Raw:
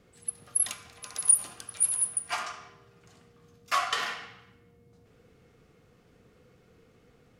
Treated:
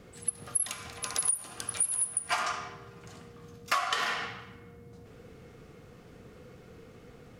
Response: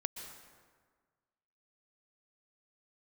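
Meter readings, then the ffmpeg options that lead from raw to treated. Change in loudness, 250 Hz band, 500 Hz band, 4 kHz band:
−3.0 dB, +6.5 dB, +3.0 dB, +0.5 dB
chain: -filter_complex "[0:a]acompressor=threshold=-33dB:ratio=16,asplit=2[link_01][link_02];[1:a]atrim=start_sample=2205,lowpass=2200[link_03];[link_02][link_03]afir=irnorm=-1:irlink=0,volume=-13dB[link_04];[link_01][link_04]amix=inputs=2:normalize=0,volume=7.5dB"

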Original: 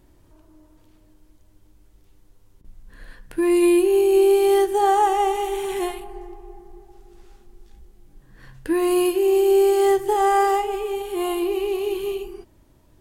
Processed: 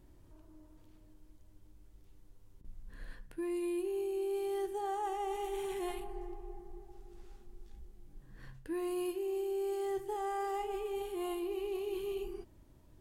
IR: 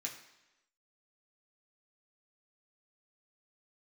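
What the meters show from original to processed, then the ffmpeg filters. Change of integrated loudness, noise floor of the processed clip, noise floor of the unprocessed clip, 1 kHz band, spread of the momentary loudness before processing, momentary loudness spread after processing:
−18.0 dB, −61 dBFS, −56 dBFS, −18.0 dB, 13 LU, 18 LU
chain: -af "lowshelf=frequency=340:gain=4.5,areverse,acompressor=threshold=-27dB:ratio=5,areverse,volume=-8.5dB"

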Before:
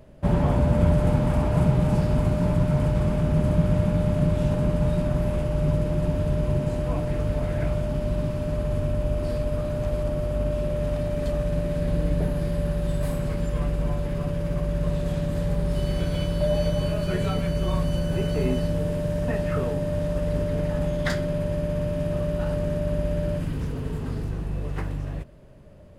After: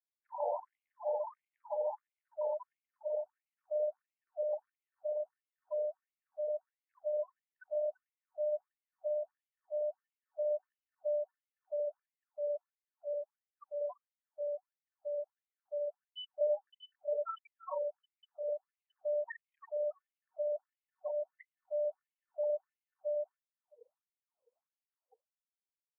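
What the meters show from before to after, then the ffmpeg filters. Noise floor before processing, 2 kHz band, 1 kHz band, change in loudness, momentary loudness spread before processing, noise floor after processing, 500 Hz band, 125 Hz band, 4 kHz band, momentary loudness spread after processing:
−30 dBFS, below −20 dB, −11.5 dB, −13.5 dB, 6 LU, below −85 dBFS, −8.5 dB, below −40 dB, −16.0 dB, 12 LU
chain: -filter_complex "[0:a]afftfilt=real='re*gte(hypot(re,im),0.0794)':imag='im*gte(hypot(re,im),0.0794)':win_size=1024:overlap=0.75,acrossover=split=330[link_01][link_02];[link_02]acompressor=threshold=-30dB:ratio=6[link_03];[link_01][link_03]amix=inputs=2:normalize=0,highshelf=frequency=9000:gain=-11.5,asplit=2[link_04][link_05];[link_05]aecho=0:1:338:0.141[link_06];[link_04][link_06]amix=inputs=2:normalize=0,afftfilt=real='re*between(b*sr/1024,660*pow(3000/660,0.5+0.5*sin(2*PI*1.5*pts/sr))/1.41,660*pow(3000/660,0.5+0.5*sin(2*PI*1.5*pts/sr))*1.41)':imag='im*between(b*sr/1024,660*pow(3000/660,0.5+0.5*sin(2*PI*1.5*pts/sr))/1.41,660*pow(3000/660,0.5+0.5*sin(2*PI*1.5*pts/sr))*1.41)':win_size=1024:overlap=0.75"

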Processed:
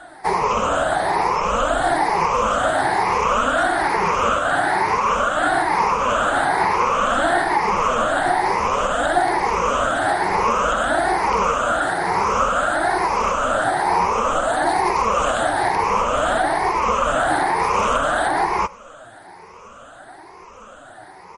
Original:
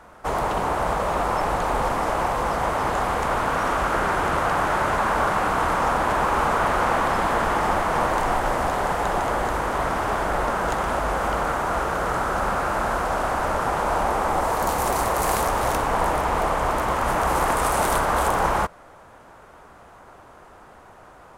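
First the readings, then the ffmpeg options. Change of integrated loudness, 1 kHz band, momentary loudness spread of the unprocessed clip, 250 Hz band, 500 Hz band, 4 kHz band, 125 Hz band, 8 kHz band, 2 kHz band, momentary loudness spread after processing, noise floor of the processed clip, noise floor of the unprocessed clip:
+4.0 dB, +4.0 dB, 3 LU, +2.0 dB, +3.5 dB, +5.0 dB, −3.0 dB, +2.0 dB, +5.0 dB, 1 LU, −42 dBFS, −48 dBFS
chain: -filter_complex "[0:a]afftfilt=real='re*pow(10,15/40*sin(2*PI*(0.82*log(max(b,1)*sr/1024/100)/log(2)-(1.1)*(pts-256)/sr)))':imag='im*pow(10,15/40*sin(2*PI*(0.82*log(max(b,1)*sr/1024/100)/log(2)-(1.1)*(pts-256)/sr)))':win_size=1024:overlap=0.75,lowshelf=frequency=160:gain=-7.5,acrossover=split=4000[link_01][link_02];[link_02]acompressor=threshold=-39dB:ratio=4:attack=1:release=60[link_03];[link_01][link_03]amix=inputs=2:normalize=0,alimiter=limit=-12.5dB:level=0:latency=1:release=281,highshelf=frequency=2100:gain=3,aecho=1:1:99:0.0631,flanger=delay=2.7:depth=8.4:regen=45:speed=0.54:shape=sinusoidal,volume=7.5dB" -ar 32000 -c:a libmp3lame -b:a 40k

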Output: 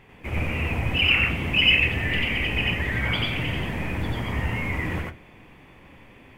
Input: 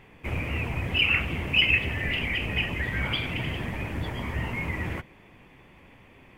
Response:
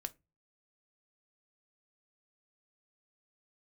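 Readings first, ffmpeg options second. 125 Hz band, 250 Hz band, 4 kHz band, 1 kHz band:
+3.5 dB, +4.0 dB, +4.0 dB, +3.5 dB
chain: -filter_complex "[0:a]asplit=2[link_01][link_02];[1:a]atrim=start_sample=2205,adelay=91[link_03];[link_02][link_03]afir=irnorm=-1:irlink=0,volume=3.5dB[link_04];[link_01][link_04]amix=inputs=2:normalize=0"

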